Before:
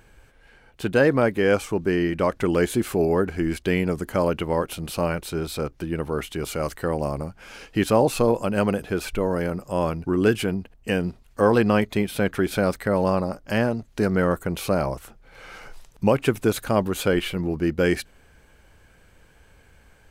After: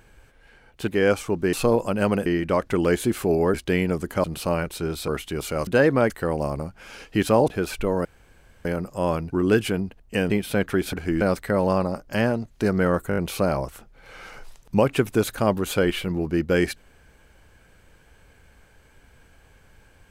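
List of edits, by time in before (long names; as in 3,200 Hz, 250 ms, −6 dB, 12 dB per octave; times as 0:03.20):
0:00.88–0:01.31: move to 0:06.71
0:03.24–0:03.52: move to 0:12.58
0:04.22–0:04.76: remove
0:05.60–0:06.12: remove
0:08.09–0:08.82: move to 0:01.96
0:09.39: splice in room tone 0.60 s
0:11.04–0:11.95: remove
0:14.46: stutter 0.02 s, 5 plays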